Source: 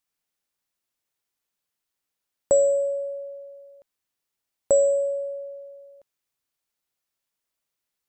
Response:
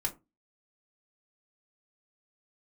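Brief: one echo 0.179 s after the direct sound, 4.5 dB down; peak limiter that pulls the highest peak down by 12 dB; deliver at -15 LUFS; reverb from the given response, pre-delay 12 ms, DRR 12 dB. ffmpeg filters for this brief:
-filter_complex "[0:a]alimiter=limit=-22dB:level=0:latency=1,aecho=1:1:179:0.596,asplit=2[a][b];[1:a]atrim=start_sample=2205,adelay=12[c];[b][c]afir=irnorm=-1:irlink=0,volume=-15.5dB[d];[a][d]amix=inputs=2:normalize=0,volume=14dB"

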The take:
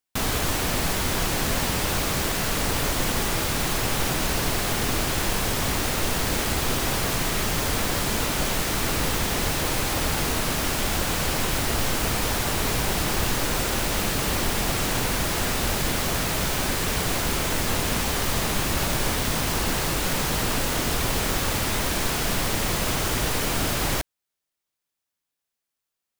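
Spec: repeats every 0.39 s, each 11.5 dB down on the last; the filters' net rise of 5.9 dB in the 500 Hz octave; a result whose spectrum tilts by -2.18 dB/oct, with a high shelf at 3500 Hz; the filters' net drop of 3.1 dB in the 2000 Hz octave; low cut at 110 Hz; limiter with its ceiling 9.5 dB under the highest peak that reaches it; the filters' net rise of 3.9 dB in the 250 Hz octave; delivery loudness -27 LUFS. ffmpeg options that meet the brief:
-af "highpass=110,equalizer=f=250:t=o:g=3.5,equalizer=f=500:t=o:g=6.5,equalizer=f=2k:t=o:g=-7,highshelf=f=3.5k:g=8,alimiter=limit=-17.5dB:level=0:latency=1,aecho=1:1:390|780|1170:0.266|0.0718|0.0194,volume=-2.5dB"

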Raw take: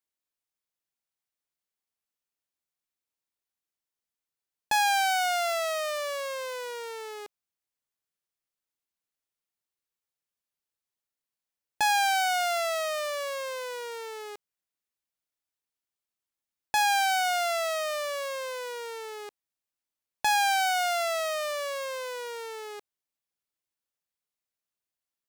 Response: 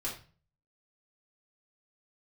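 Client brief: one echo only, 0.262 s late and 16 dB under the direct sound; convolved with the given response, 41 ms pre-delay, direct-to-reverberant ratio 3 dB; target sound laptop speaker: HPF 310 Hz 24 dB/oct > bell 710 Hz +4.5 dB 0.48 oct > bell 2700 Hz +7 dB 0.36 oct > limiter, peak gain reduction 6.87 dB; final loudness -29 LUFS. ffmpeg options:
-filter_complex "[0:a]aecho=1:1:262:0.158,asplit=2[a][b];[1:a]atrim=start_sample=2205,adelay=41[c];[b][c]afir=irnorm=-1:irlink=0,volume=-5.5dB[d];[a][d]amix=inputs=2:normalize=0,highpass=f=310:w=0.5412,highpass=f=310:w=1.3066,equalizer=f=710:t=o:w=0.48:g=4.5,equalizer=f=2.7k:t=o:w=0.36:g=7,volume=-2.5dB,alimiter=limit=-18dB:level=0:latency=1"

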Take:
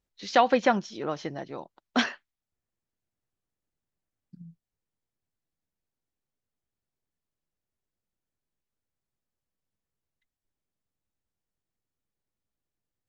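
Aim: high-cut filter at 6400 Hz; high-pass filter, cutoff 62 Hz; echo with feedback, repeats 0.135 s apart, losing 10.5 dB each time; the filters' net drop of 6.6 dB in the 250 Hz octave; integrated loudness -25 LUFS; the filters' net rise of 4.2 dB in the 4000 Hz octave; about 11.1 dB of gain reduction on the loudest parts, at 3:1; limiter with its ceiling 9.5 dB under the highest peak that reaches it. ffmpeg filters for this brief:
-af "highpass=62,lowpass=6.4k,equalizer=f=250:t=o:g=-7.5,equalizer=f=4k:t=o:g=6,acompressor=threshold=-32dB:ratio=3,alimiter=limit=-24dB:level=0:latency=1,aecho=1:1:135|270|405:0.299|0.0896|0.0269,volume=13dB"

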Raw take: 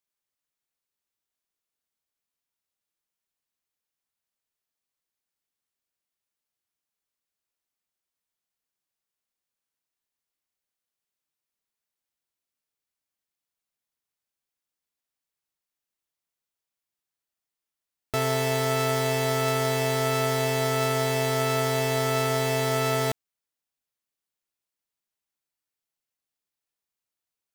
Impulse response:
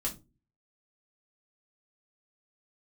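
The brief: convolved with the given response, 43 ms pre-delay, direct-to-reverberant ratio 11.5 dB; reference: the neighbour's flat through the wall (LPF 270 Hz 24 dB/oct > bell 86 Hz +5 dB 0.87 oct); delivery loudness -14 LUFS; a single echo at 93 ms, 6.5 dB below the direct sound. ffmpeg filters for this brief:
-filter_complex "[0:a]aecho=1:1:93:0.473,asplit=2[a][b];[1:a]atrim=start_sample=2205,adelay=43[c];[b][c]afir=irnorm=-1:irlink=0,volume=-14.5dB[d];[a][d]amix=inputs=2:normalize=0,lowpass=f=270:w=0.5412,lowpass=f=270:w=1.3066,equalizer=f=86:t=o:w=0.87:g=5,volume=15dB"

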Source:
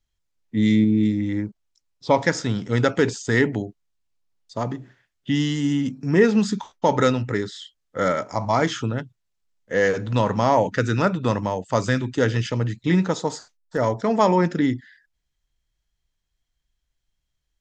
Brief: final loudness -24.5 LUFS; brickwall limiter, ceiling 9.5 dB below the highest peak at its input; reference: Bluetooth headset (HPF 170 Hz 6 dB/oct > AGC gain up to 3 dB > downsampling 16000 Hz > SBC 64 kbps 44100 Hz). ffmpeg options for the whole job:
-af "alimiter=limit=-14dB:level=0:latency=1,highpass=f=170:p=1,dynaudnorm=m=3dB,aresample=16000,aresample=44100,volume=2dB" -ar 44100 -c:a sbc -b:a 64k

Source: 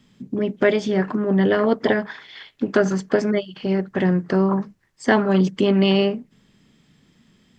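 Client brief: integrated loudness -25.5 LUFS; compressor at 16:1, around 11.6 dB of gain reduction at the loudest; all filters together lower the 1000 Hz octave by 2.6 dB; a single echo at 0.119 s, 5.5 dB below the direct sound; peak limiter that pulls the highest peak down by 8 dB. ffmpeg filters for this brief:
-af "equalizer=f=1k:t=o:g=-3.5,acompressor=threshold=-24dB:ratio=16,alimiter=limit=-21dB:level=0:latency=1,aecho=1:1:119:0.531,volume=5dB"

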